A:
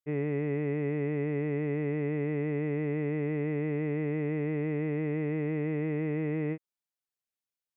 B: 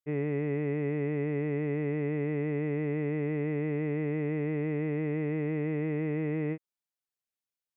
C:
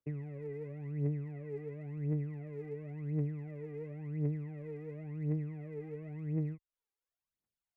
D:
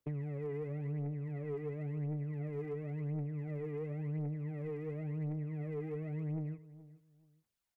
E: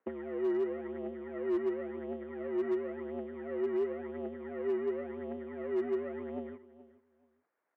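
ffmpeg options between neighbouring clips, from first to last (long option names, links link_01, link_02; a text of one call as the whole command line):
ffmpeg -i in.wav -af anull out.wav
ffmpeg -i in.wav -filter_complex "[0:a]highshelf=frequency=2100:gain=-11.5,acrossover=split=120[link_01][link_02];[link_02]acompressor=threshold=-44dB:ratio=10[link_03];[link_01][link_03]amix=inputs=2:normalize=0,aphaser=in_gain=1:out_gain=1:delay=2.6:decay=0.76:speed=0.94:type=triangular,volume=-1dB" out.wav
ffmpeg -i in.wav -filter_complex "[0:a]acompressor=threshold=-39dB:ratio=4,asoftclip=type=tanh:threshold=-37.5dB,asplit=2[link_01][link_02];[link_02]adelay=427,lowpass=frequency=1600:poles=1,volume=-17.5dB,asplit=2[link_03][link_04];[link_04]adelay=427,lowpass=frequency=1600:poles=1,volume=0.23[link_05];[link_01][link_03][link_05]amix=inputs=3:normalize=0,volume=5.5dB" out.wav
ffmpeg -i in.wav -filter_complex "[0:a]asplit=2[link_01][link_02];[link_02]acrusher=samples=13:mix=1:aa=0.000001,volume=-4dB[link_03];[link_01][link_03]amix=inputs=2:normalize=0,highpass=frequency=380:width_type=q:width=0.5412,highpass=frequency=380:width_type=q:width=1.307,lowpass=frequency=2200:width_type=q:width=0.5176,lowpass=frequency=2200:width_type=q:width=0.7071,lowpass=frequency=2200:width_type=q:width=1.932,afreqshift=-69,asoftclip=type=hard:threshold=-33.5dB,volume=7.5dB" out.wav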